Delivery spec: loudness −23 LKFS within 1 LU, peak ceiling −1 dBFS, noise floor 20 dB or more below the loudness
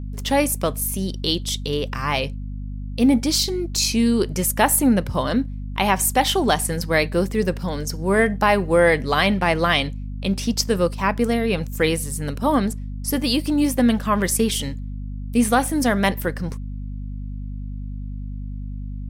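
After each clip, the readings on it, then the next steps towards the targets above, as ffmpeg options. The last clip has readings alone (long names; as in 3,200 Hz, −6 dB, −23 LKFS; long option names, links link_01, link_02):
mains hum 50 Hz; hum harmonics up to 250 Hz; level of the hum −27 dBFS; integrated loudness −20.5 LKFS; sample peak −4.5 dBFS; target loudness −23.0 LKFS
→ -af "bandreject=frequency=50:width_type=h:width=6,bandreject=frequency=100:width_type=h:width=6,bandreject=frequency=150:width_type=h:width=6,bandreject=frequency=200:width_type=h:width=6,bandreject=frequency=250:width_type=h:width=6"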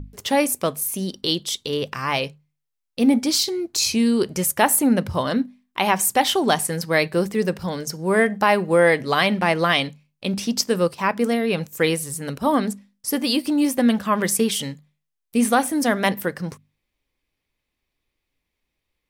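mains hum none found; integrated loudness −21.0 LKFS; sample peak −4.5 dBFS; target loudness −23.0 LKFS
→ -af "volume=-2dB"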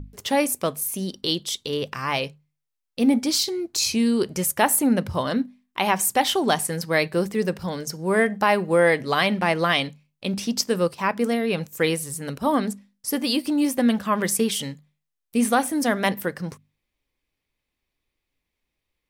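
integrated loudness −23.0 LKFS; sample peak −6.5 dBFS; background noise floor −81 dBFS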